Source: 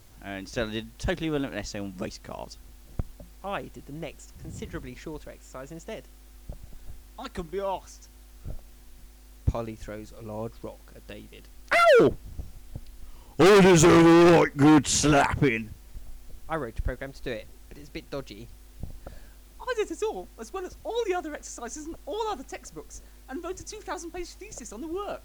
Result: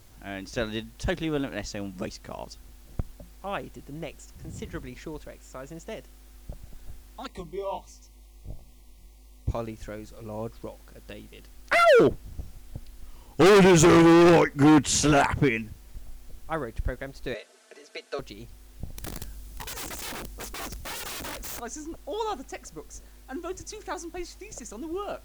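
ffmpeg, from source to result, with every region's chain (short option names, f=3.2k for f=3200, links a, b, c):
-filter_complex "[0:a]asettb=1/sr,asplit=3[a][b][c];[a]atrim=end=7.274[d];[b]atrim=start=7.27:end=9.51,asetpts=PTS-STARTPTS,afade=t=in:d=0.004:c=qsin,afade=t=out:st=2.236:d=0.004:c=qsin,bandreject=f=64.91:t=h:w=4,bandreject=f=129.82:t=h:w=4,bandreject=f=194.73:t=h:w=4,flanger=delay=16:depth=6.8:speed=1.4,asuperstop=centerf=1500:order=12:qfactor=2.1[e];[c]atrim=start=9.506[f];[d][e]acrossfade=d=0.004:c1=hsin:c2=qsin[g];[g][f]acrossfade=d=0.004:c1=qsin:c2=hsin,asettb=1/sr,asplit=3[h][i][j];[h]atrim=end=17.344[k];[i]atrim=start=17.34:end=18.19,asetpts=PTS-STARTPTS,afade=t=in:d=0.004:c=qsin,afade=t=out:st=0.846:d=0.004:c=qsin,highpass=f=370:w=0.5412,highpass=f=370:w=1.3066,equalizer=f=650:t=q:w=4:g=7,equalizer=f=920:t=q:w=4:g=-4,equalizer=f=1.5k:t=q:w=4:g=5,lowpass=f=9.6k:w=0.5412,lowpass=f=9.6k:w=1.3066,aecho=1:1:4.6:0.77,atrim=end_sample=37485,acompressor=mode=upward:threshold=-54dB:ratio=2.5:attack=3.2:release=140:knee=2.83:detection=peak[l];[j]atrim=start=18.186[m];[k][l]acrossfade=d=0.004:c1=hsin:c2=qsin[n];[n][m]acrossfade=d=0.004:c1=qsin:c2=hsin,asettb=1/sr,asplit=3[o][p][q];[o]atrim=end=18.974[r];[p]atrim=start=18.97:end=21.6,asetpts=PTS-STARTPTS,afade=t=in:d=0.004:c=qsin,afade=t=out:st=2.626:d=0.004:c=qsin,bass=f=250:g=9,treble=f=4k:g=6,aeval=exprs='(mod(35.5*val(0)+1,2)-1)/35.5':c=same[s];[q]atrim=start=21.596[t];[r][s]acrossfade=d=0.004:c1=hsin:c2=qsin[u];[u][t]acrossfade=d=0.004:c1=qsin:c2=hsin"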